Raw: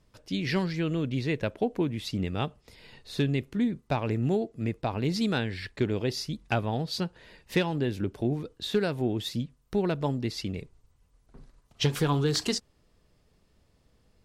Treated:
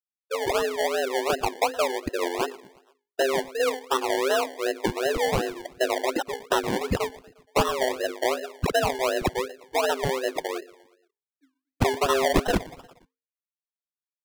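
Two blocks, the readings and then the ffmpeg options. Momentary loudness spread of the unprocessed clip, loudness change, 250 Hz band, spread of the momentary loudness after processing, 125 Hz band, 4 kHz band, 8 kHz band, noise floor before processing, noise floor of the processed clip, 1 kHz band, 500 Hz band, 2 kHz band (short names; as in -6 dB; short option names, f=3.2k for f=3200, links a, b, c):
6 LU, +3.5 dB, -3.5 dB, 7 LU, -6.5 dB, +3.0 dB, +7.0 dB, -67 dBFS, under -85 dBFS, +10.0 dB, +7.0 dB, +7.0 dB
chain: -af "aeval=exprs='if(lt(val(0),0),0.708*val(0),val(0))':c=same,afftfilt=real='re*gte(hypot(re,im),0.0708)':imag='im*gte(hypot(re,im),0.0708)':win_size=1024:overlap=0.75,bandreject=f=50:t=h:w=6,bandreject=f=100:t=h:w=6,bandreject=f=150:t=h:w=6,bandreject=f=200:t=h:w=6,bandreject=f=250:t=h:w=6,acontrast=45,tiltshelf=f=1.4k:g=-6,aecho=1:1:118|236|354|472:0.1|0.054|0.0292|0.0157,afreqshift=260,acrusher=samples=27:mix=1:aa=0.000001:lfo=1:lforange=16.2:lforate=2.7,asoftclip=type=tanh:threshold=-15.5dB,highshelf=f=7.1k:g=-5.5,volume=5dB"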